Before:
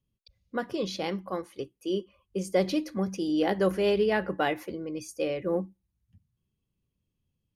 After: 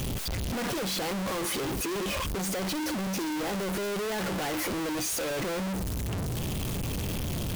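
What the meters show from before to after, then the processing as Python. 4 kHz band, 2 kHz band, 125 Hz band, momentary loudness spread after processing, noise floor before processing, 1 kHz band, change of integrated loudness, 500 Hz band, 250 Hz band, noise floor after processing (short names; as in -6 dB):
+5.5 dB, +2.0 dB, +7.0 dB, 3 LU, -82 dBFS, +0.5 dB, -1.0 dB, -4.5 dB, -0.5 dB, -31 dBFS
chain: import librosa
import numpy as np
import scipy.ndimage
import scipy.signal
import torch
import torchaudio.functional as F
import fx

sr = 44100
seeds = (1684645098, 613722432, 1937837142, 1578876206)

y = np.sign(x) * np.sqrt(np.mean(np.square(x)))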